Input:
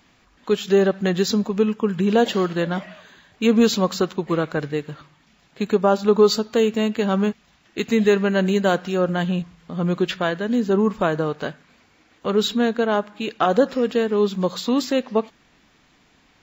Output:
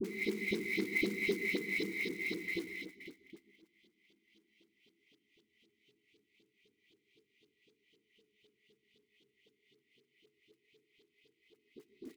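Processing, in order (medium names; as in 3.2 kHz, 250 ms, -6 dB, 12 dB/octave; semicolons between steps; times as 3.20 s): chunks repeated in reverse 105 ms, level -1 dB; graphic EQ 125/2000/4000/8000 Hz +8/-5/-5/-9 dB; Paulstretch 27×, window 0.25 s, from 11.58 s; brick-wall FIR band-stop 340–1400 Hz; in parallel at 0 dB: level held to a coarse grid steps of 21 dB; on the sum: loudspeakers at several distances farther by 48 m -8 dB, 90 m -2 dB; LFO band-pass saw up 2.9 Hz 320–3100 Hz; gate -54 dBFS, range -15 dB; speed mistake 33 rpm record played at 45 rpm; short-mantissa float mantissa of 2-bit; phase dispersion highs, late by 41 ms, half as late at 610 Hz; on a send at -23 dB: reverberation RT60 0.40 s, pre-delay 115 ms; on the sum: trim +4.5 dB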